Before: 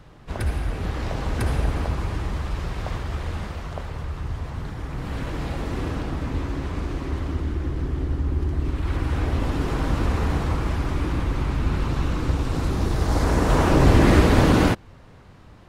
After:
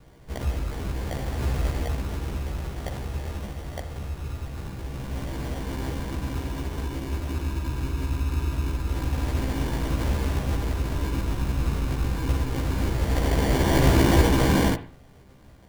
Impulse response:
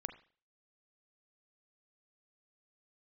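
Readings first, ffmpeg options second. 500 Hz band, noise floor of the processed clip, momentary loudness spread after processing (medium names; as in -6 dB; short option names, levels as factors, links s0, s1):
-3.0 dB, -50 dBFS, 14 LU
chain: -filter_complex "[0:a]acrusher=samples=34:mix=1:aa=0.000001,asplit=2[s0][s1];[1:a]atrim=start_sample=2205,adelay=15[s2];[s1][s2]afir=irnorm=-1:irlink=0,volume=1.41[s3];[s0][s3]amix=inputs=2:normalize=0,volume=0.473"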